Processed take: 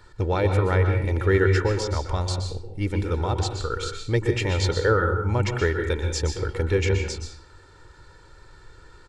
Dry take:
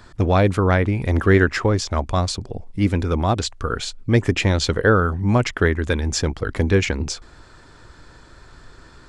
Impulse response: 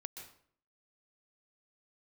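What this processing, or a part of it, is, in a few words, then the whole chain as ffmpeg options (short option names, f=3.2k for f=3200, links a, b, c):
microphone above a desk: -filter_complex "[0:a]aecho=1:1:2.2:0.6[a];[1:a]atrim=start_sample=2205[b];[a][b]afir=irnorm=-1:irlink=0,volume=-2.5dB"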